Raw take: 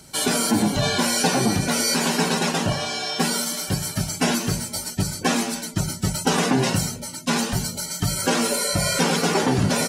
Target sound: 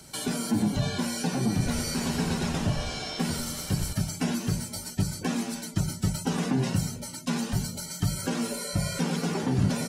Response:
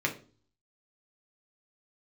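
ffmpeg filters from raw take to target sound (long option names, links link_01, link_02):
-filter_complex "[0:a]acrossover=split=260[link_01][link_02];[link_02]acompressor=threshold=-35dB:ratio=2.5[link_03];[link_01][link_03]amix=inputs=2:normalize=0,asettb=1/sr,asplit=3[link_04][link_05][link_06];[link_04]atrim=end=1.474[link_07];[link_05]atrim=start=1.47:end=3.93,asetpts=PTS-STARTPTS,afade=type=in:duration=0.004:curve=qsin,afade=type=out:start_time=2.456:duration=0.004:curve=qsin,asplit=7[link_08][link_09][link_10][link_11][link_12][link_13][link_14];[link_09]adelay=91,afreqshift=-87,volume=-7dB[link_15];[link_10]adelay=182,afreqshift=-174,volume=-12.7dB[link_16];[link_11]adelay=273,afreqshift=-261,volume=-18.4dB[link_17];[link_12]adelay=364,afreqshift=-348,volume=-24dB[link_18];[link_13]adelay=455,afreqshift=-435,volume=-29.7dB[link_19];[link_14]adelay=546,afreqshift=-522,volume=-35.4dB[link_20];[link_08][link_15][link_16][link_17][link_18][link_19][link_20]amix=inputs=7:normalize=0,atrim=end_sample=108486[link_21];[link_06]atrim=start=3.926[link_22];[link_07][link_21]acrossfade=duration=0.004:curve1=hsin:curve2=qsin[link_23];[link_23][link_22]acrossfade=duration=0.004:curve1=qsin:curve2=hsin,volume=-2dB"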